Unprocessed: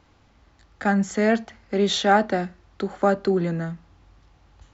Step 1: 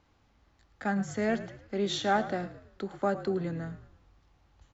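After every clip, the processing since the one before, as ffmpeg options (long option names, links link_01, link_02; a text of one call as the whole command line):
ffmpeg -i in.wav -filter_complex "[0:a]asplit=5[link_01][link_02][link_03][link_04][link_05];[link_02]adelay=109,afreqshift=-47,volume=-14dB[link_06];[link_03]adelay=218,afreqshift=-94,volume=-21.3dB[link_07];[link_04]adelay=327,afreqshift=-141,volume=-28.7dB[link_08];[link_05]adelay=436,afreqshift=-188,volume=-36dB[link_09];[link_01][link_06][link_07][link_08][link_09]amix=inputs=5:normalize=0,volume=-9dB" out.wav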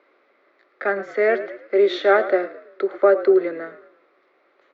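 ffmpeg -i in.wav -af "highpass=frequency=350:width=0.5412,highpass=frequency=350:width=1.3066,equalizer=frequency=380:width_type=q:width=4:gain=10,equalizer=frequency=570:width_type=q:width=4:gain=9,equalizer=frequency=850:width_type=q:width=4:gain=-8,equalizer=frequency=1300:width_type=q:width=4:gain=6,equalizer=frequency=2100:width_type=q:width=4:gain=8,equalizer=frequency=3000:width_type=q:width=4:gain=-8,lowpass=frequency=3700:width=0.5412,lowpass=frequency=3700:width=1.3066,volume=8dB" out.wav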